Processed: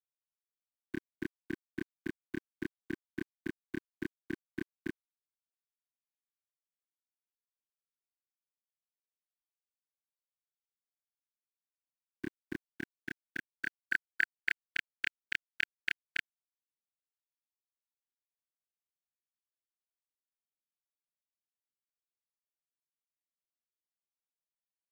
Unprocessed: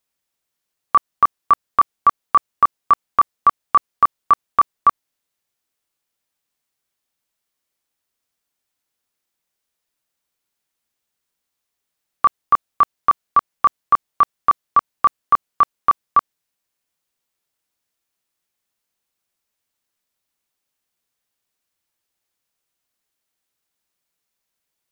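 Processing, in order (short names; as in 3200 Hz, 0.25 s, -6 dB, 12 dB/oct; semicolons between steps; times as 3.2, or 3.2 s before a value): brick-wall FIR band-stop 360–1500 Hz; band-pass sweep 420 Hz -> 2600 Hz, 12.47–14.7; sample gate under -58 dBFS; gain +11.5 dB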